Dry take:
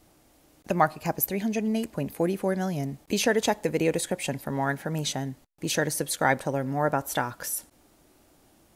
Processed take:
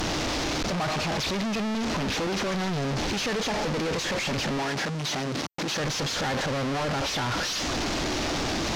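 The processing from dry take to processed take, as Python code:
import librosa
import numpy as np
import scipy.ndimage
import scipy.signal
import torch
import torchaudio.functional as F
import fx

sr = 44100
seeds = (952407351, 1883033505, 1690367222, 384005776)

y = fx.delta_mod(x, sr, bps=32000, step_db=-17.0)
y = fx.highpass(y, sr, hz=130.0, slope=12, at=(4.62, 5.8))
y = 10.0 ** (-21.5 / 20.0) * np.tanh(y / 10.0 ** (-21.5 / 20.0))
y = F.gain(torch.from_numpy(y), -2.5).numpy()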